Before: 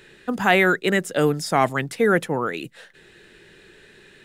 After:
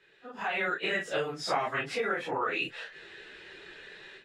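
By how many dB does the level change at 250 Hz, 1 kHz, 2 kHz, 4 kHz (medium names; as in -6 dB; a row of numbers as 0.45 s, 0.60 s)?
-17.5 dB, -9.5 dB, -9.0 dB, -6.0 dB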